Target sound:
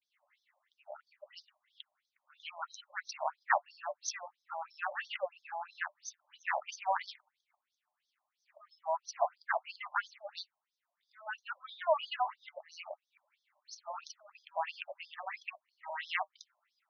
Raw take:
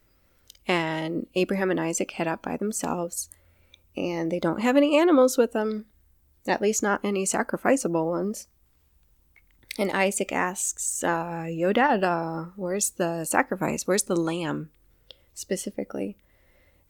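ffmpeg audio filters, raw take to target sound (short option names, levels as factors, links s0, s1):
-af "areverse,flanger=delay=5.5:depth=1.3:regen=-57:speed=0.19:shape=triangular,afftfilt=real='re*between(b*sr/1024,780*pow(4700/780,0.5+0.5*sin(2*PI*3*pts/sr))/1.41,780*pow(4700/780,0.5+0.5*sin(2*PI*3*pts/sr))*1.41)':imag='im*between(b*sr/1024,780*pow(4700/780,0.5+0.5*sin(2*PI*3*pts/sr))/1.41,780*pow(4700/780,0.5+0.5*sin(2*PI*3*pts/sr))*1.41)':win_size=1024:overlap=0.75,volume=1.19"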